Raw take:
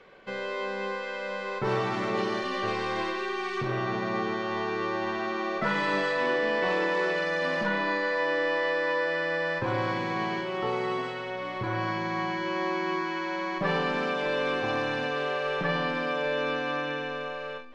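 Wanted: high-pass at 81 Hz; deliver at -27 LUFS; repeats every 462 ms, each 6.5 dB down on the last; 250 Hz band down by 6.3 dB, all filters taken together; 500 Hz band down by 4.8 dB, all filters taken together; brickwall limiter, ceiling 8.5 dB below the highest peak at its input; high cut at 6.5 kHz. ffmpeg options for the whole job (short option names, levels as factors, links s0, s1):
-af "highpass=81,lowpass=6500,equalizer=f=250:t=o:g=-8,equalizer=f=500:t=o:g=-3.5,alimiter=level_in=1.19:limit=0.0631:level=0:latency=1,volume=0.841,aecho=1:1:462|924|1386|1848|2310|2772:0.473|0.222|0.105|0.0491|0.0231|0.0109,volume=1.88"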